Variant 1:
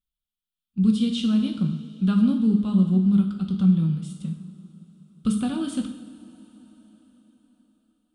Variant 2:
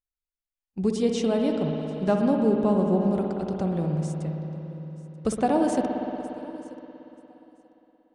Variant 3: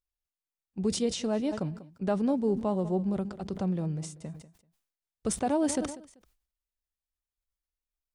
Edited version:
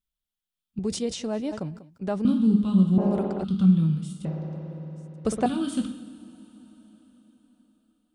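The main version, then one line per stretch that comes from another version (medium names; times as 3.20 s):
1
0.79–2.25 s: from 3
2.98–3.44 s: from 2
4.25–5.46 s: from 2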